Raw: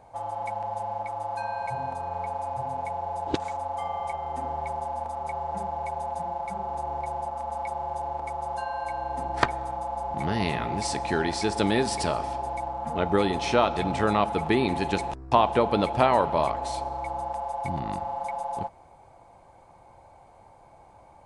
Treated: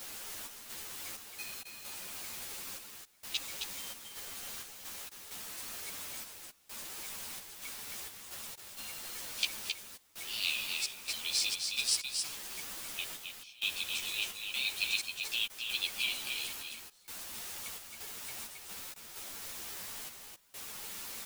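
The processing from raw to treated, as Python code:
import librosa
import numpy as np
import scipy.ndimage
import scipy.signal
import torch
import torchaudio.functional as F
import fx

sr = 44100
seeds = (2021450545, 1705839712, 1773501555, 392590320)

y = scipy.signal.sosfilt(scipy.signal.butter(16, 2400.0, 'highpass', fs=sr, output='sos'), x)
y = fx.quant_dither(y, sr, seeds[0], bits=8, dither='triangular')
y = fx.step_gate(y, sr, bpm=65, pattern='xx.xx.x.xxxx..x', floor_db=-24.0, edge_ms=4.5)
y = y + 10.0 ** (-5.0 / 20.0) * np.pad(y, (int(267 * sr / 1000.0), 0))[:len(y)]
y = fx.ensemble(y, sr)
y = y * librosa.db_to_amplitude(7.0)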